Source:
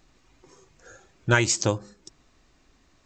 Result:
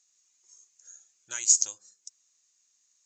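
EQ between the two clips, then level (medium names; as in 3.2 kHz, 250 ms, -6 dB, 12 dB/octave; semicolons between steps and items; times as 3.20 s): band-pass filter 6.7 kHz, Q 5.9; +8.0 dB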